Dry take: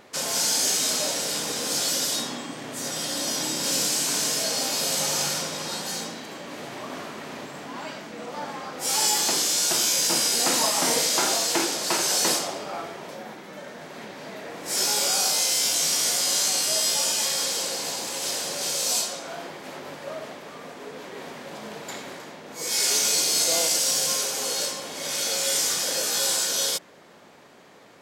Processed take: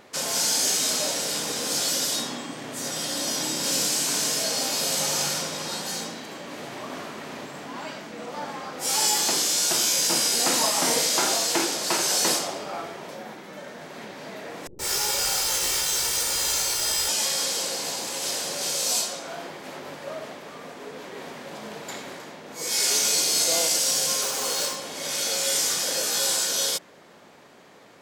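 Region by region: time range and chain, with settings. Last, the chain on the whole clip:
0:14.67–0:17.09: lower of the sound and its delayed copy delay 2.2 ms + multiband delay without the direct sound lows, highs 120 ms, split 320 Hz
0:24.22–0:24.76: parametric band 1,100 Hz +5 dB 0.6 octaves + log-companded quantiser 4 bits
whole clip: no processing

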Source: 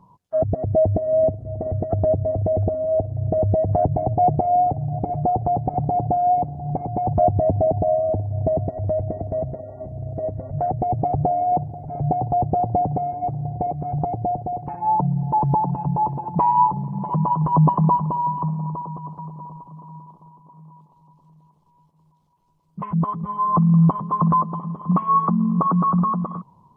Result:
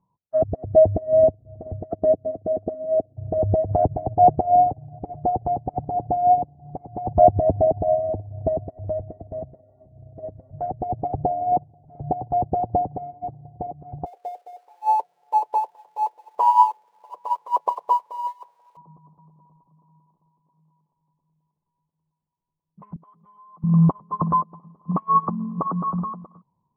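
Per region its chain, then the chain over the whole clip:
0:01.91–0:03.17: low shelf with overshoot 160 Hz −7.5 dB, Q 1.5 + notch comb filter 880 Hz
0:14.06–0:18.77: spike at every zero crossing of −24 dBFS + Chebyshev high-pass filter 470 Hz, order 4 + double-tracking delay 29 ms −13.5 dB
0:22.96–0:23.64: spectral tilt +4.5 dB per octave + downward compressor 4 to 1, threshold −29 dBFS
whole clip: low-pass filter 1,000 Hz 6 dB per octave; dynamic equaliser 170 Hz, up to −5 dB, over −30 dBFS, Q 1; expander for the loud parts 2.5 to 1, over −33 dBFS; level +7.5 dB

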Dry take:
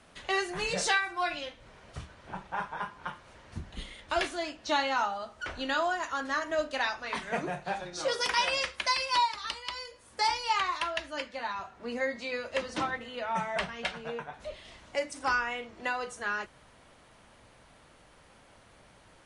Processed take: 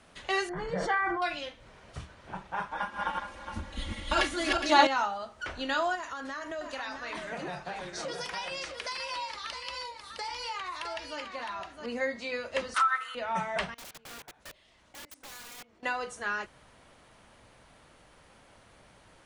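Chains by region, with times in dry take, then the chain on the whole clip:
0:00.49–0:01.22: Savitzky-Golay smoothing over 41 samples + comb filter 6.1 ms, depth 33% + level that may fall only so fast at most 23 dB per second
0:02.71–0:04.87: feedback delay that plays each chunk backwards 207 ms, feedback 43%, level −1 dB + comb filter 3.6 ms, depth 100%
0:05.95–0:11.86: downward compressor 5 to 1, threshold −34 dBFS + single-tap delay 661 ms −6.5 dB
0:12.74–0:13.15: high-pass with resonance 1,300 Hz, resonance Q 13 + parametric band 9,600 Hz +14 dB 0.7 octaves + downward compressor 10 to 1, threshold −21 dBFS
0:13.74–0:15.83: low-shelf EQ 180 Hz −2.5 dB + output level in coarse steps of 21 dB + wrap-around overflow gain 41 dB
whole clip: no processing

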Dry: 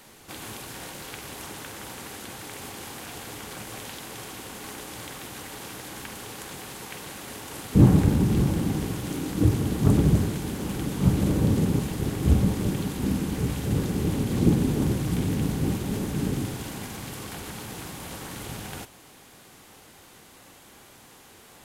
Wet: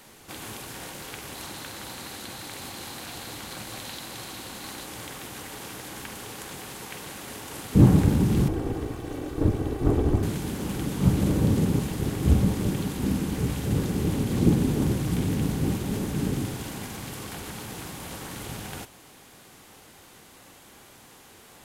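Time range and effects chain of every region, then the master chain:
0:01.35–0:04.86: parametric band 4,100 Hz +8 dB 0.26 octaves + notch filter 430 Hz
0:08.48–0:10.23: lower of the sound and its delayed copy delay 2.6 ms + high-shelf EQ 2,300 Hz −11.5 dB
whole clip: no processing

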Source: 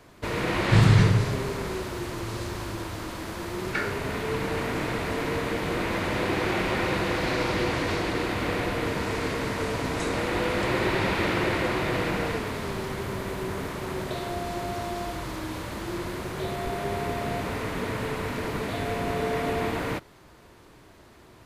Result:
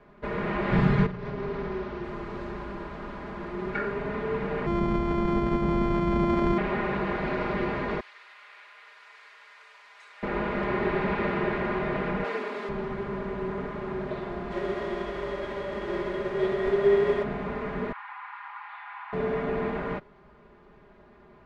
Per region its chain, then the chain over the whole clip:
0:01.06–0:02.04: variable-slope delta modulation 32 kbit/s + downward compressor 12 to 1, threshold −26 dBFS
0:04.66–0:06.58: samples sorted by size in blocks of 128 samples + low-pass filter 11,000 Hz + low-shelf EQ 390 Hz +11 dB
0:08.00–0:10.23: high-pass filter 940 Hz + first difference
0:12.24–0:12.69: high-pass filter 260 Hz 24 dB per octave + high-shelf EQ 3,500 Hz +11.5 dB
0:14.50–0:17.22: spectral envelope flattened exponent 0.6 + hollow resonant body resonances 400/560/1,900/3,300 Hz, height 15 dB, ringing for 100 ms
0:17.92–0:19.13: Butterworth high-pass 800 Hz 96 dB per octave + high-frequency loss of the air 280 metres
whole clip: low-pass filter 1,800 Hz 12 dB per octave; comb filter 4.9 ms, depth 91%; level −3.5 dB

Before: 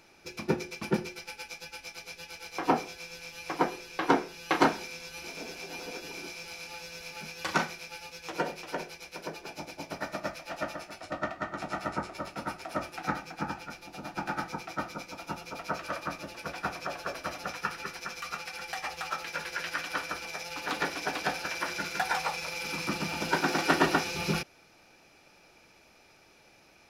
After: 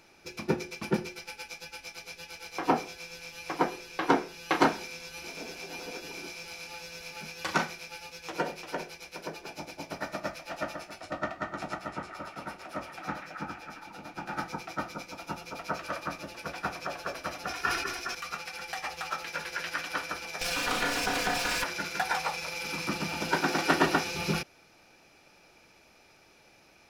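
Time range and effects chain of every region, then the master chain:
0:11.74–0:14.33: flanger 1.1 Hz, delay 1.9 ms, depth 9.1 ms, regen −74% + echo through a band-pass that steps 135 ms, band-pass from 2,500 Hz, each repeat −0.7 octaves, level −2 dB
0:17.47–0:18.15: comb filter 2.8 ms + level that may fall only so fast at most 49 dB per second
0:20.41–0:21.64: lower of the sound and its delayed copy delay 4.1 ms + flutter between parallel walls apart 5.5 metres, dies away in 0.28 s + envelope flattener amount 70%
whole clip: no processing

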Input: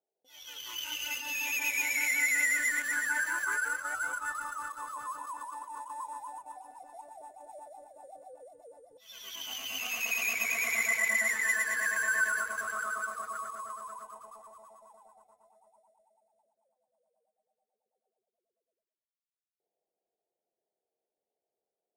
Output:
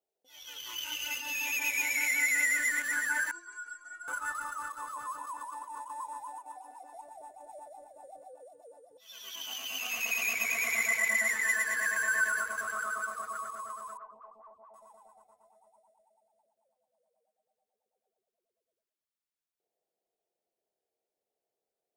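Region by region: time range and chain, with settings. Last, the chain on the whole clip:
0:03.31–0:04.08: low-pass filter 8,100 Hz 24 dB per octave + stiff-string resonator 340 Hz, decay 0.24 s, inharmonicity 0.008
0:06.31–0:06.95: notch filter 620 Hz, Q 17 + upward compression, threshold −46 dBFS + linear-phase brick-wall high-pass 230 Hz
0:08.27–0:09.90: high-pass filter 230 Hz 6 dB per octave + notch filter 2,100 Hz, Q 10
0:13.97–0:14.74: low-pass filter 1,700 Hz + phaser with staggered stages 4.8 Hz
whole clip: no processing

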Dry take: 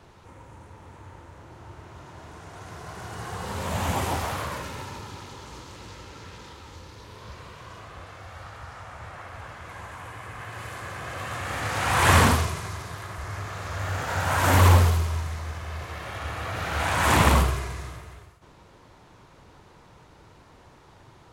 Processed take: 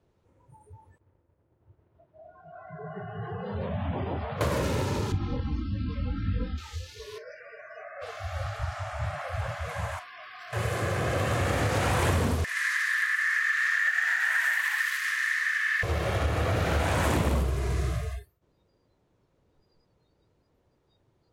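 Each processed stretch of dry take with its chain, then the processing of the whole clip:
0:00.98–0:04.41: downward expander −41 dBFS + high-frequency loss of the air 250 metres + downward compressor 3 to 1, threshold −42 dBFS
0:05.12–0:06.58: bass and treble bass +10 dB, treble −12 dB + comb filter 3.8 ms, depth 53% + micro pitch shift up and down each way 29 cents
0:07.18–0:08.02: band-pass filter 230–5,800 Hz + phaser with its sweep stopped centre 970 Hz, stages 6
0:09.99–0:10.53: bass and treble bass −13 dB, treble −9 dB + tube saturation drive 44 dB, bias 0.75 + Butterworth band-reject 870 Hz, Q 5.2
0:12.44–0:15.83: downward compressor 4 to 1, threshold −26 dBFS + high-pass with resonance 1,800 Hz, resonance Q 15
whole clip: noise reduction from a noise print of the clip's start 28 dB; low shelf with overshoot 700 Hz +6.5 dB, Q 1.5; downward compressor 10 to 1, threshold −28 dBFS; level +5.5 dB

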